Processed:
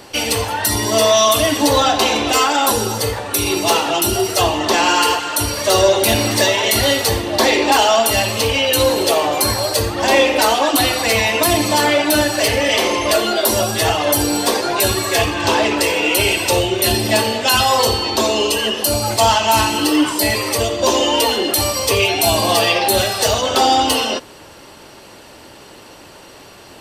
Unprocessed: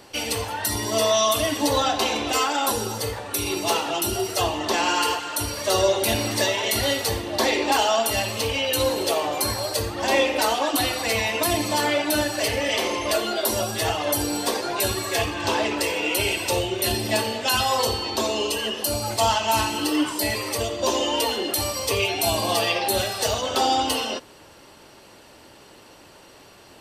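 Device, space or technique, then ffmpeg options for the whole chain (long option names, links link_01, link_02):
parallel distortion: -filter_complex "[0:a]asplit=2[link_01][link_02];[link_02]asoftclip=type=hard:threshold=-20dB,volume=-7dB[link_03];[link_01][link_03]amix=inputs=2:normalize=0,volume=5dB"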